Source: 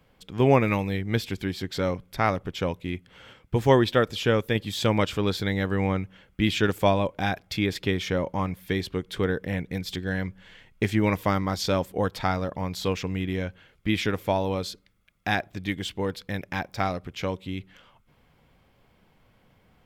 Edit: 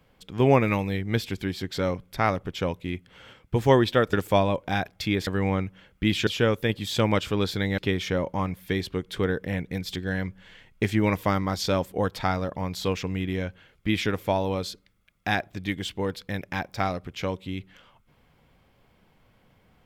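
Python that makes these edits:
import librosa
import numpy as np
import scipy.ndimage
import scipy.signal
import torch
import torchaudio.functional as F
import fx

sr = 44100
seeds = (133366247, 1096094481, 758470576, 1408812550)

y = fx.edit(x, sr, fx.swap(start_s=4.13, length_s=1.51, other_s=6.64, other_length_s=1.14), tone=tone)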